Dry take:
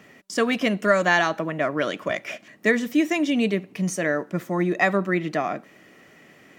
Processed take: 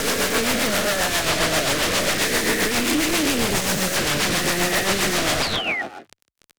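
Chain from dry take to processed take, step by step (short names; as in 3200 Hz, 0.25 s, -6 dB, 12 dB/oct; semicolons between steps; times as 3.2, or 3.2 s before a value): spectral swells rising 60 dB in 2.97 s; Schroeder reverb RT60 0.9 s, combs from 30 ms, DRR 18.5 dB; in parallel at 0 dB: compressor, threshold -28 dBFS, peak gain reduction 16 dB; on the sum: fuzz box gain 22 dB, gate -31 dBFS; on a send: frequency-shifting echo 0.153 s, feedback 39%, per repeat +32 Hz, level -17.5 dB; on the sum: sine folder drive 13 dB, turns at -9 dBFS; painted sound fall, 5.42–5.82, 1800–5000 Hz -16 dBFS; limiter -14 dBFS, peak gain reduction 9.5 dB; rotary speaker horn 7.5 Hz; Doppler distortion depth 0.23 ms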